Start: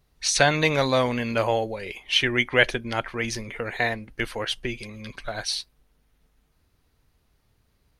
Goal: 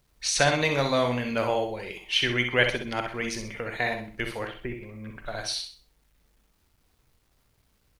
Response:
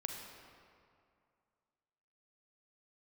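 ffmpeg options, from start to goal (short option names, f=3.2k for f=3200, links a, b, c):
-filter_complex "[0:a]asettb=1/sr,asplit=3[a][b][c];[a]atrim=end=4.474[d];[b]atrim=start=4.47:end=5.26,asetpts=PTS-STARTPTS,afade=t=in:d=0.004:c=qsin,afade=t=out:st=0.786:d=0.004:c=qsin,lowpass=f=2k:w=0.5412,lowpass=f=2k:w=1.3066[e];[c]atrim=start=5.256[f];[d][e]acrossfade=d=0.004:c1=hsin:c2=qsin[g];[g][f]acrossfade=d=0.004:c1=qsin:c2=hsin,aecho=1:1:65|130|195|260:0.422|0.131|0.0405|0.0126,acrusher=bits=10:mix=0:aa=0.000001[h];[1:a]atrim=start_sample=2205,atrim=end_sample=3087[i];[h][i]afir=irnorm=-1:irlink=0,volume=-1.5dB"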